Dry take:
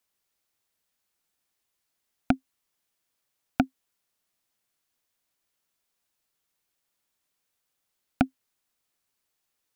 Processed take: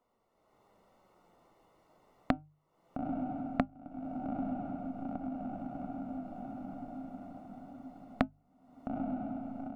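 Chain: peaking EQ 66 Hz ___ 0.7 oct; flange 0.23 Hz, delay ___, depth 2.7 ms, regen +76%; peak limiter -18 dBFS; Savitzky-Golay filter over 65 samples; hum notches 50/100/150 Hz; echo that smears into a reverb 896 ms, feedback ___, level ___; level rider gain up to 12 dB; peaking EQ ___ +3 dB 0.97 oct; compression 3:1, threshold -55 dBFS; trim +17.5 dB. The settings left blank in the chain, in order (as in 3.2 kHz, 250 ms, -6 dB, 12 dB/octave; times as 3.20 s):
-5.5 dB, 4.1 ms, 49%, -13 dB, 570 Hz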